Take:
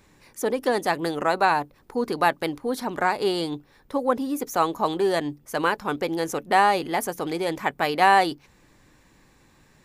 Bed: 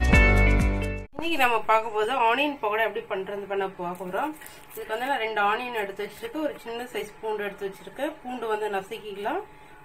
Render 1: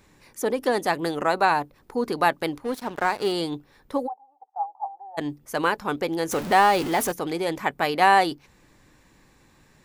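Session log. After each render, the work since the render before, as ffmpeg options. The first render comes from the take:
-filter_complex "[0:a]asettb=1/sr,asplit=3[s0][s1][s2];[s0]atrim=end=2.644[s3];[s1]atrim=start=2.64:end=3.32,asetpts=PTS-STARTPTS,afade=t=in:d=0.004:c=qsin,afade=t=out:st=0.676:d=0.004:c=qsin,aeval=exprs='sgn(val(0))*max(abs(val(0))-0.0133,0)':c=same[s4];[s2]atrim=start=3.316[s5];[s3][s4]acrossfade=d=0.004:c1=hsin:c2=qsin[s6];[s6][s5]acrossfade=d=0.004:c1=qsin:c2=hsin,asplit=3[s7][s8][s9];[s7]afade=t=out:st=4.06:d=0.02[s10];[s8]asuperpass=centerf=800:order=4:qfactor=7.3,afade=t=in:st=4.06:d=0.02,afade=t=out:st=5.17:d=0.02[s11];[s9]afade=t=in:st=5.17:d=0.02[s12];[s10][s11][s12]amix=inputs=3:normalize=0,asettb=1/sr,asplit=3[s13][s14][s15];[s13]atrim=end=6.314[s16];[s14]atrim=start=6.31:end=7.12,asetpts=PTS-STARTPTS,afade=t=in:d=0.004:c=qsin,afade=t=out:st=0.806:d=0.004:c=qsin,aeval=exprs='val(0)+0.5*0.0422*sgn(val(0))':c=same[s17];[s15]atrim=start=7.116[s18];[s16][s17]acrossfade=d=0.004:c1=hsin:c2=qsin[s19];[s19][s18]acrossfade=d=0.004:c1=qsin:c2=hsin"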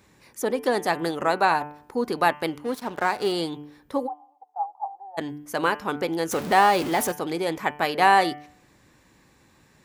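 -af "highpass=56,bandreject=f=147.9:t=h:w=4,bandreject=f=295.8:t=h:w=4,bandreject=f=443.7:t=h:w=4,bandreject=f=591.6:t=h:w=4,bandreject=f=739.5:t=h:w=4,bandreject=f=887.4:t=h:w=4,bandreject=f=1035.3:t=h:w=4,bandreject=f=1183.2:t=h:w=4,bandreject=f=1331.1:t=h:w=4,bandreject=f=1479:t=h:w=4,bandreject=f=1626.9:t=h:w=4,bandreject=f=1774.8:t=h:w=4,bandreject=f=1922.7:t=h:w=4,bandreject=f=2070.6:t=h:w=4,bandreject=f=2218.5:t=h:w=4,bandreject=f=2366.4:t=h:w=4,bandreject=f=2514.3:t=h:w=4,bandreject=f=2662.2:t=h:w=4,bandreject=f=2810.1:t=h:w=4,bandreject=f=2958:t=h:w=4,bandreject=f=3105.9:t=h:w=4,bandreject=f=3253.8:t=h:w=4"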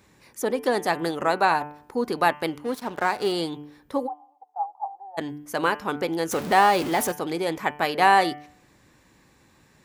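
-af anull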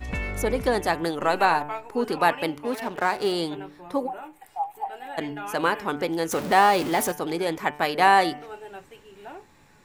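-filter_complex "[1:a]volume=0.237[s0];[0:a][s0]amix=inputs=2:normalize=0"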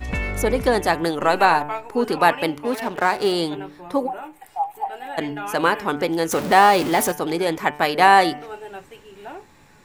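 -af "volume=1.68,alimiter=limit=0.891:level=0:latency=1"

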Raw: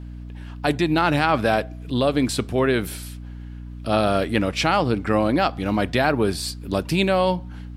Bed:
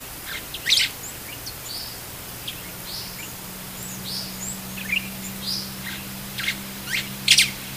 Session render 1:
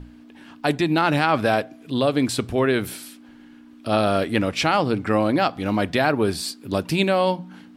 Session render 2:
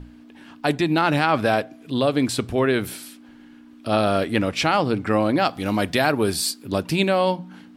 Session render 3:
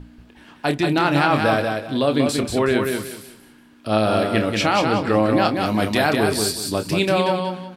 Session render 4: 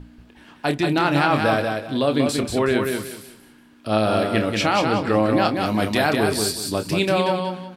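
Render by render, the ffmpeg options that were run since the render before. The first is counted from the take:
-af "bandreject=f=60:t=h:w=6,bandreject=f=120:t=h:w=6,bandreject=f=180:t=h:w=6"
-filter_complex "[0:a]asettb=1/sr,asplit=3[s0][s1][s2];[s0]atrim=end=5.454[s3];[s1]atrim=start=5.45:end=6.63,asetpts=PTS-STARTPTS,afade=t=in:d=0.004:c=qsin,afade=t=out:st=1.176:d=0.004:c=qsin,aemphasis=mode=production:type=cd[s4];[s2]atrim=start=6.626[s5];[s3][s4]acrossfade=d=0.004:c1=hsin:c2=qsin[s6];[s6][s5]acrossfade=d=0.004:c1=qsin:c2=hsin"
-filter_complex "[0:a]asplit=2[s0][s1];[s1]adelay=28,volume=0.355[s2];[s0][s2]amix=inputs=2:normalize=0,aecho=1:1:185|370|555|740:0.596|0.155|0.0403|0.0105"
-af "volume=0.891"

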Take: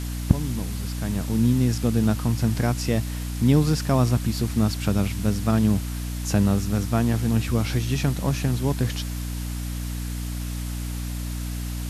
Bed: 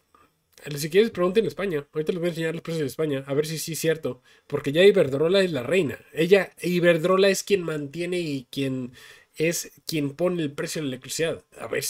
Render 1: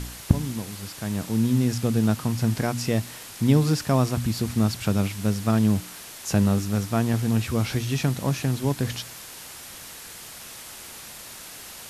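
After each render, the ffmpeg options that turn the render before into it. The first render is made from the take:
-af "bandreject=f=60:t=h:w=4,bandreject=f=120:t=h:w=4,bandreject=f=180:t=h:w=4,bandreject=f=240:t=h:w=4,bandreject=f=300:t=h:w=4"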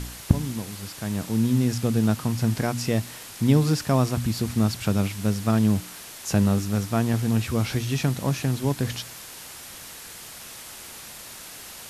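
-af anull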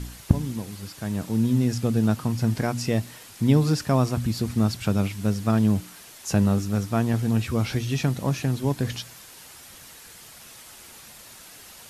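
-af "afftdn=nr=6:nf=-41"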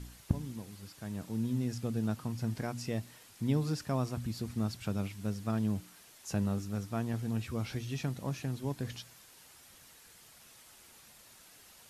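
-af "volume=0.266"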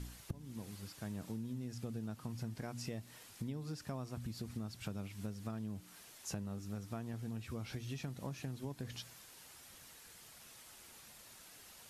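-af "acompressor=threshold=0.0112:ratio=12"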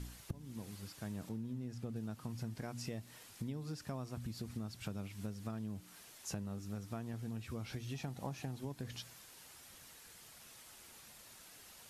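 -filter_complex "[0:a]asettb=1/sr,asplit=3[s0][s1][s2];[s0]atrim=end=1.294[s3];[s1]atrim=start=1.29:end=1.96,asetpts=PTS-STARTPTS,afade=t=in:d=0.004:c=qsin,afade=t=out:st=0.666:d=0.004:c=qsin,highshelf=f=3000:g=-7.5[s4];[s2]atrim=start=1.956[s5];[s3][s4]acrossfade=d=0.004:c1=hsin:c2=qsin[s6];[s6][s5]acrossfade=d=0.004:c1=qsin:c2=hsin,asettb=1/sr,asplit=3[s7][s8][s9];[s7]atrim=end=7.944[s10];[s8]atrim=start=7.94:end=8.61,asetpts=PTS-STARTPTS,afade=t=in:d=0.004:c=qsin,afade=t=out:st=0.666:d=0.004:c=qsin,equalizer=f=790:w=3.3:g=9[s11];[s9]atrim=start=8.606[s12];[s10][s11]acrossfade=d=0.004:c1=hsin:c2=qsin[s13];[s13][s12]acrossfade=d=0.004:c1=qsin:c2=hsin"

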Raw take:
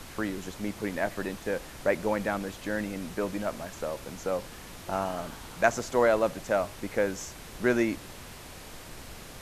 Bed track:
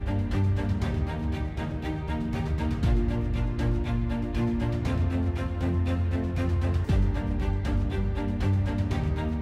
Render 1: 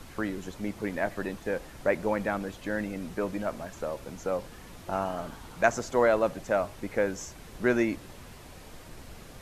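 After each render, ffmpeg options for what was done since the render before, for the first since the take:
-af "afftdn=nr=6:nf=-45"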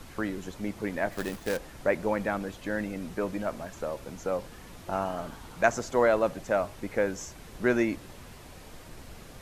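-filter_complex "[0:a]asettb=1/sr,asplit=3[s0][s1][s2];[s0]atrim=end=1.124[s3];[s1]atrim=start=1.12:end=1.57,asetpts=PTS-STARTPTS,afade=t=in:d=0.004:c=qsin,afade=t=out:st=0.446:d=0.004:c=qsin,acrusher=bits=2:mode=log:mix=0:aa=0.000001[s4];[s2]atrim=start=1.566[s5];[s3][s4]acrossfade=d=0.004:c1=hsin:c2=qsin[s6];[s6][s5]acrossfade=d=0.004:c1=qsin:c2=hsin"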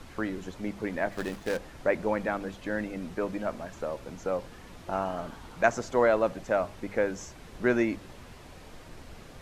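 -af "highshelf=f=8900:g=-11,bandreject=f=50:t=h:w=6,bandreject=f=100:t=h:w=6,bandreject=f=150:t=h:w=6,bandreject=f=200:t=h:w=6"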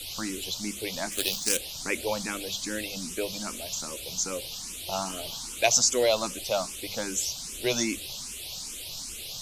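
-filter_complex "[0:a]aexciter=amount=13.5:drive=5.4:freq=2700,asplit=2[s0][s1];[s1]afreqshift=2.5[s2];[s0][s2]amix=inputs=2:normalize=1"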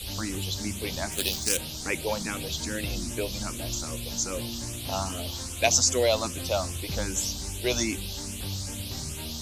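-filter_complex "[1:a]volume=0.299[s0];[0:a][s0]amix=inputs=2:normalize=0"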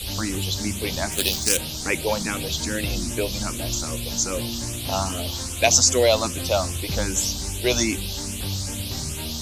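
-af "volume=1.88,alimiter=limit=0.794:level=0:latency=1"

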